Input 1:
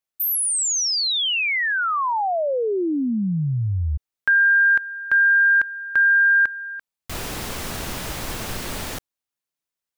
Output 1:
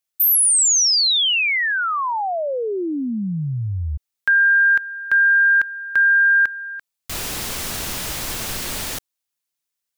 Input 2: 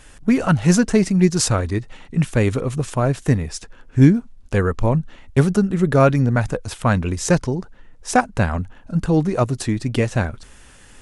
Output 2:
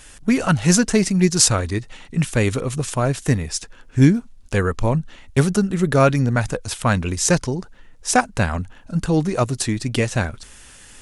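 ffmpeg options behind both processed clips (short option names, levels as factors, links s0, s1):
-af "highshelf=f=2300:g=8.5,volume=0.841"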